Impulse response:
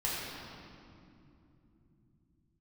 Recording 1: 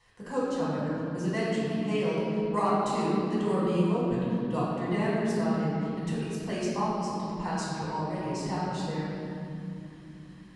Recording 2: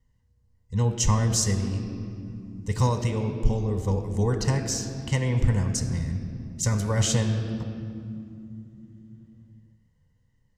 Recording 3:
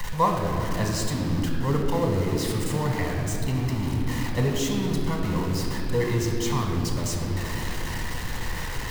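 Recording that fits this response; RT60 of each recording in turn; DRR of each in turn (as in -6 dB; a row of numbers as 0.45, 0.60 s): 1; 3.0, 2.6, 3.0 s; -8.0, 6.0, 0.5 dB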